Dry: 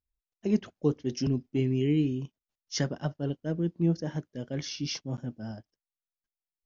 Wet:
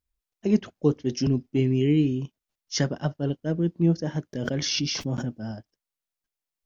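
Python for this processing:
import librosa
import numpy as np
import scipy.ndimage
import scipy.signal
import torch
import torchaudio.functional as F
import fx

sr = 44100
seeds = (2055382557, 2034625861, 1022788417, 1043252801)

y = fx.pre_swell(x, sr, db_per_s=21.0, at=(4.33, 5.38))
y = y * 10.0 ** (4.5 / 20.0)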